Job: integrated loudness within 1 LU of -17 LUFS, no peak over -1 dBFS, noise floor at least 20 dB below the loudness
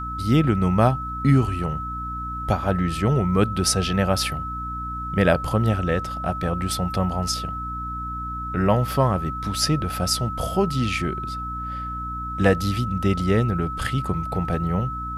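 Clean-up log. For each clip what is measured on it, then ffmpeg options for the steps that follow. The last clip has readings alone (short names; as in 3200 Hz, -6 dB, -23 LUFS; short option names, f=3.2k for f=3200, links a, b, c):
hum 60 Hz; harmonics up to 300 Hz; hum level -31 dBFS; steady tone 1300 Hz; tone level -29 dBFS; loudness -23.5 LUFS; peak -5.0 dBFS; loudness target -17.0 LUFS
-> -af "bandreject=f=60:t=h:w=6,bandreject=f=120:t=h:w=6,bandreject=f=180:t=h:w=6,bandreject=f=240:t=h:w=6,bandreject=f=300:t=h:w=6"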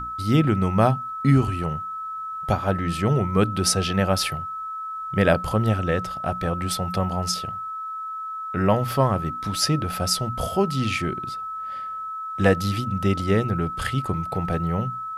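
hum none; steady tone 1300 Hz; tone level -29 dBFS
-> -af "bandreject=f=1.3k:w=30"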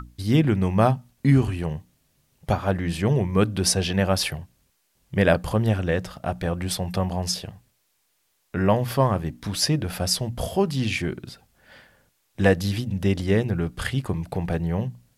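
steady tone none; loudness -24.0 LUFS; peak -5.5 dBFS; loudness target -17.0 LUFS
-> -af "volume=7dB,alimiter=limit=-1dB:level=0:latency=1"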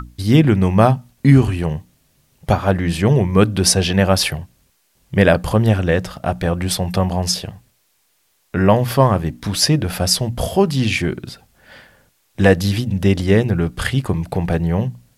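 loudness -17.0 LUFS; peak -1.0 dBFS; noise floor -63 dBFS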